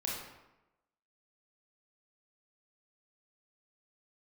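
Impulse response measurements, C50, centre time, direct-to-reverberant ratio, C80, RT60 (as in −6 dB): 0.5 dB, 64 ms, −4.0 dB, 4.0 dB, 0.95 s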